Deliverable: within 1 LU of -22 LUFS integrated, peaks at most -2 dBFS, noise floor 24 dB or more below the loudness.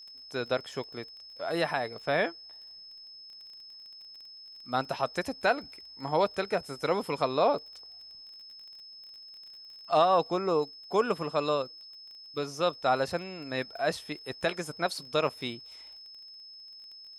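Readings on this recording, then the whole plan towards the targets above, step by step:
tick rate 22 per s; steady tone 5.2 kHz; tone level -46 dBFS; loudness -30.5 LUFS; peak level -12.0 dBFS; loudness target -22.0 LUFS
-> de-click; band-stop 5.2 kHz, Q 30; trim +8.5 dB

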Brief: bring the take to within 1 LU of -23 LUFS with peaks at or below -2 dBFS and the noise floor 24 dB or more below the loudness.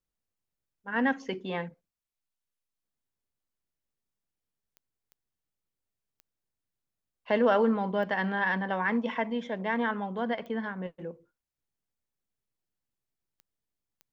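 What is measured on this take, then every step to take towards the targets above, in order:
clicks found 7; loudness -29.5 LUFS; peak level -13.5 dBFS; loudness target -23.0 LUFS
-> de-click; trim +6.5 dB

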